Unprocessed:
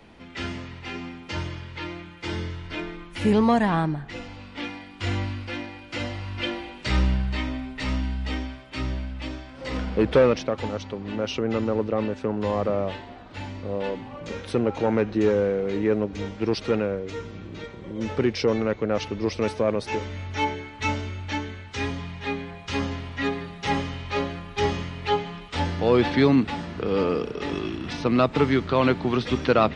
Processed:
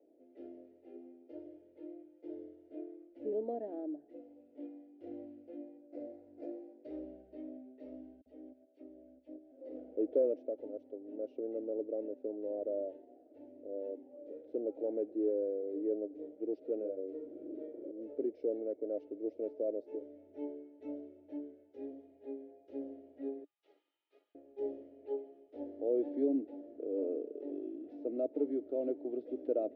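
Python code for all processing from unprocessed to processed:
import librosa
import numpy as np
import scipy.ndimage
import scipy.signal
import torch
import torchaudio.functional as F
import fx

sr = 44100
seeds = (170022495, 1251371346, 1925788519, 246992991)

y = fx.chain(x, sr, fx.notch(hz=3000.0, q=6.3),
    fx.dynamic_eq(hz=2700.0, q=1.2, threshold_db=-45.0, ratio=4.0, max_db=6),
    fx.running_max(window=9), at=(5.77, 6.84))
y = fx.chain(y, sr, fx.level_steps(step_db=11),
    fx.dispersion(late='lows', ms=51.0, hz=2500.0), at=(8.21, 9.52))
y = fx.chain(y, sr, fx.doubler(ms=42.0, db=-3.0),
    fx.band_squash(depth_pct=70), at=(16.77, 17.91))
y = fx.chain(y, sr, fx.cheby_ripple_highpass(hz=880.0, ripple_db=9),
    fx.doppler_dist(depth_ms=0.13), at=(23.44, 24.35))
y = scipy.signal.sosfilt(scipy.signal.ellip(3, 1.0, 40, [290.0, 620.0], 'bandpass', fs=sr, output='sos'), y)
y = fx.peak_eq(y, sr, hz=440.0, db=-9.0, octaves=1.6)
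y = F.gain(torch.from_numpy(y), -2.5).numpy()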